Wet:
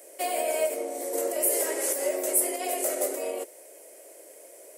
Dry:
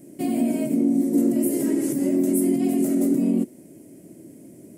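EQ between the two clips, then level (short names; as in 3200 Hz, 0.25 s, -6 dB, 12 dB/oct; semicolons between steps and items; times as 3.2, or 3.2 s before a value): elliptic high-pass 490 Hz, stop band 60 dB; +8.0 dB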